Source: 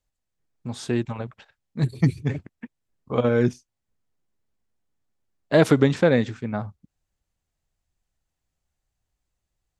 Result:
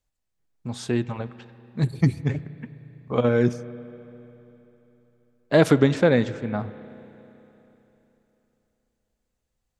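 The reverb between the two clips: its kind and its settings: spring tank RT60 3.4 s, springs 33/49 ms, chirp 60 ms, DRR 15.5 dB

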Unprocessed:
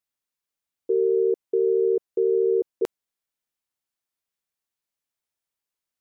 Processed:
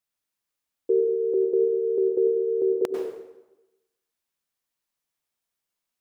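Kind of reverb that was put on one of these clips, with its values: plate-style reverb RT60 1 s, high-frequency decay 0.8×, pre-delay 85 ms, DRR 2 dB; gain +1 dB

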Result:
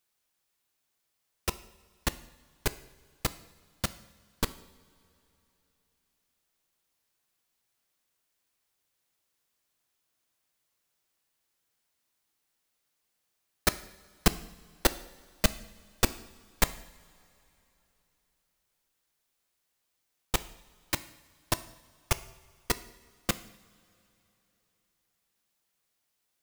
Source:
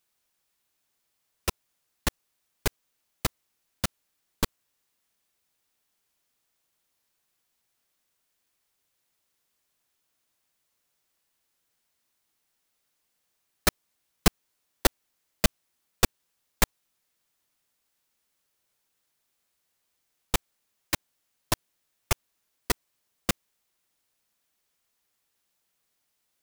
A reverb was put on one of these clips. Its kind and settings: two-slope reverb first 0.7 s, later 3.4 s, from -17 dB, DRR 13 dB; gain -2.5 dB

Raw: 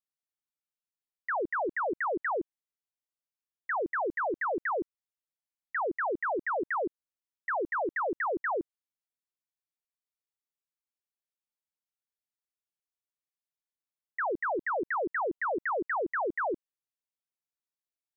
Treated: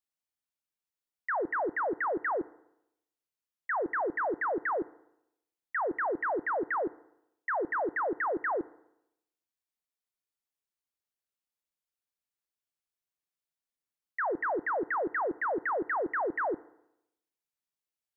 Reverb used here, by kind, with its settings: FDN reverb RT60 0.83 s, low-frequency decay 1×, high-frequency decay 0.9×, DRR 18.5 dB

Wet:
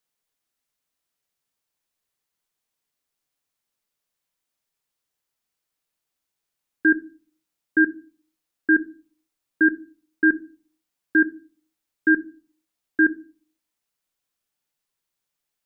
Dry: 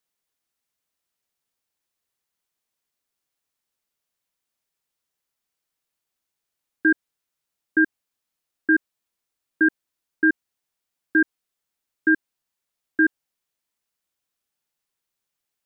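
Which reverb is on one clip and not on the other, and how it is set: shoebox room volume 230 m³, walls furnished, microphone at 0.4 m

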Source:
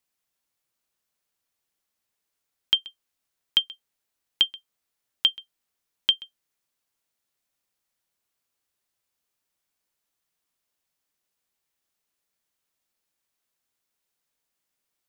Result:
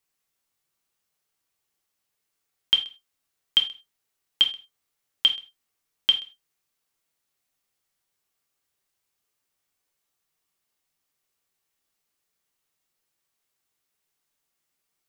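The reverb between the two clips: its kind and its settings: non-linear reverb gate 0.12 s falling, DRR 2.5 dB

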